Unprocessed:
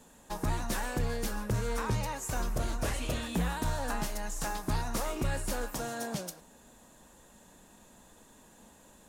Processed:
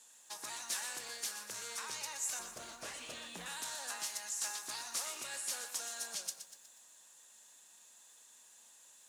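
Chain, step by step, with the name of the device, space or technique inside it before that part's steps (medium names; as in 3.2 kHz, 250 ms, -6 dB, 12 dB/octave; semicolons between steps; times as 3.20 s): piezo pickup straight into a mixer (low-pass 7.5 kHz 12 dB/octave; differentiator); 2.39–3.46 s: tilt EQ -3 dB/octave; high-pass 260 Hz 6 dB/octave; bit-crushed delay 121 ms, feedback 55%, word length 11-bit, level -10 dB; trim +6 dB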